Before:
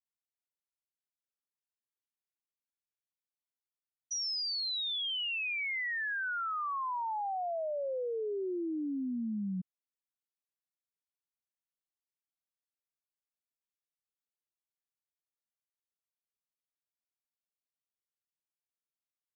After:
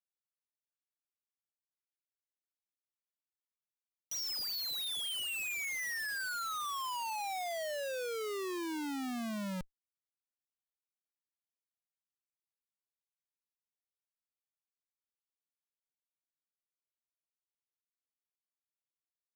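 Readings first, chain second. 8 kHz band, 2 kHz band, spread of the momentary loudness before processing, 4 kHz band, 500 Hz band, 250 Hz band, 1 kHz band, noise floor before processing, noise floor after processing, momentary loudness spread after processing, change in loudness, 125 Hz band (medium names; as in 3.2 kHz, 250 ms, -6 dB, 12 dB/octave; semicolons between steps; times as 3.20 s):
no reading, -3.0 dB, 4 LU, -3.0 dB, -3.5 dB, -4.0 dB, -3.0 dB, under -85 dBFS, under -85 dBFS, 4 LU, -2.5 dB, -3.5 dB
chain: dynamic bell 3.9 kHz, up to +7 dB, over -50 dBFS, Q 0.95; Schmitt trigger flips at -35.5 dBFS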